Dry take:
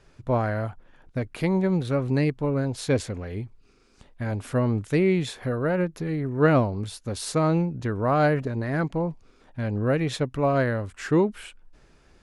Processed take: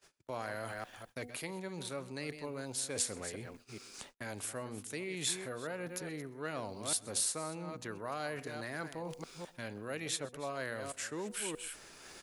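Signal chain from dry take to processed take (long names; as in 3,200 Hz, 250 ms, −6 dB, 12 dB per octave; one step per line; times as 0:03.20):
delay that plays each chunk backwards 210 ms, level −13 dB
hum removal 243.5 Hz, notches 3
reversed playback
downward compressor 6 to 1, threshold −37 dBFS, peak gain reduction 21 dB
reversed playback
RIAA equalisation recording
slap from a distant wall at 22 metres, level −22 dB
dynamic equaliser 8,400 Hz, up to +5 dB, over −54 dBFS, Q 1.2
noise gate −59 dBFS, range −35 dB
multiband upward and downward compressor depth 40%
level +1.5 dB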